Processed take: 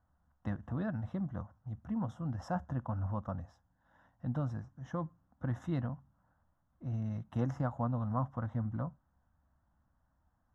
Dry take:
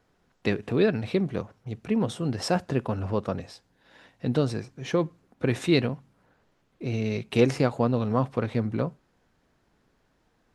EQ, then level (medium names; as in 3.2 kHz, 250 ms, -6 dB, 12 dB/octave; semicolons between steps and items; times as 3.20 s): boxcar filter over 10 samples; peaking EQ 72 Hz +14.5 dB 0.44 oct; static phaser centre 1 kHz, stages 4; -6.5 dB